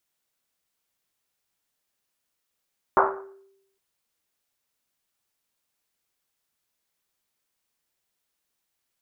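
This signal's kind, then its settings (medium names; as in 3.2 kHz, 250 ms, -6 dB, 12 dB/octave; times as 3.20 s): Risset drum length 0.81 s, pitch 390 Hz, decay 0.88 s, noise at 990 Hz, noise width 920 Hz, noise 60%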